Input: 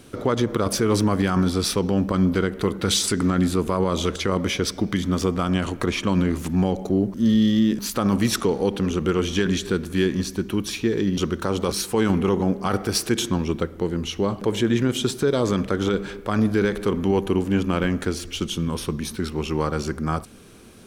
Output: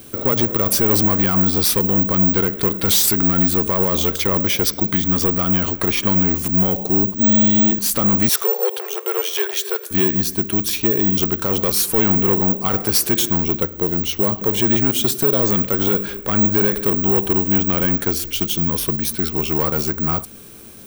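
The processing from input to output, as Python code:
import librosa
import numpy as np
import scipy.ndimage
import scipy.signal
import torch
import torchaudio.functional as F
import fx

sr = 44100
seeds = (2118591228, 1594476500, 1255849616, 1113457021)

p1 = fx.high_shelf(x, sr, hz=7200.0, db=9.5)
p2 = fx.notch(p1, sr, hz=1300.0, q=27.0)
p3 = 10.0 ** (-18.5 / 20.0) * (np.abs((p2 / 10.0 ** (-18.5 / 20.0) + 3.0) % 4.0 - 2.0) - 1.0)
p4 = p2 + F.gain(torch.from_numpy(p3), -3.5).numpy()
p5 = fx.brickwall_highpass(p4, sr, low_hz=370.0, at=(8.29, 9.91))
p6 = (np.kron(p5[::2], np.eye(2)[0]) * 2)[:len(p5)]
y = F.gain(torch.from_numpy(p6), -1.5).numpy()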